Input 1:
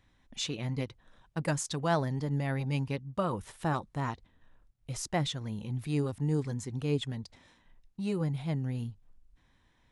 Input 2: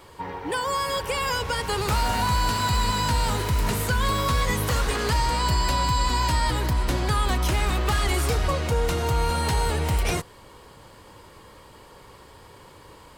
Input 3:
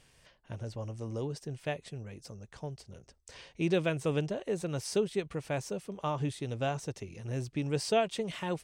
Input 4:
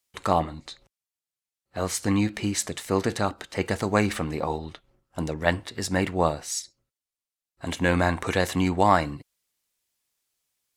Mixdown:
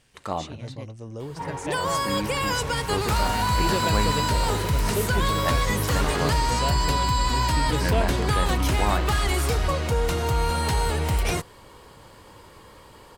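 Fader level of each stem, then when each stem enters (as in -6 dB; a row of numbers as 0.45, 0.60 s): -6.5, 0.0, +0.5, -7.0 dB; 0.00, 1.20, 0.00, 0.00 s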